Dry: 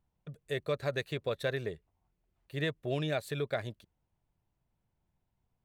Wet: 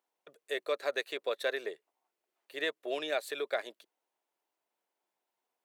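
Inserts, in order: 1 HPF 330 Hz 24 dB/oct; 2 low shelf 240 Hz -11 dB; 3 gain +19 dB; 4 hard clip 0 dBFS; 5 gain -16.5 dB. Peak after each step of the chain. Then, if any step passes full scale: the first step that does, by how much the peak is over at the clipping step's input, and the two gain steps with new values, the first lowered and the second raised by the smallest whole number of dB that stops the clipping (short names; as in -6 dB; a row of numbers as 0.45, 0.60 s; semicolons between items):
-20.5, -21.5, -2.5, -2.5, -19.0 dBFS; no overload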